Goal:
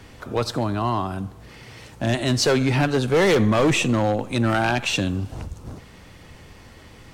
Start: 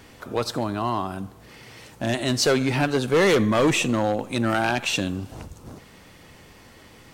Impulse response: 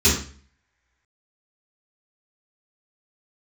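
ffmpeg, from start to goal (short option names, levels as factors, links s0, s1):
-filter_complex "[0:a]highshelf=f=12000:g=-8.5,acrossover=split=120[s0][s1];[s0]acontrast=79[s2];[s2][s1]amix=inputs=2:normalize=0,asoftclip=type=hard:threshold=0.211,volume=1.19"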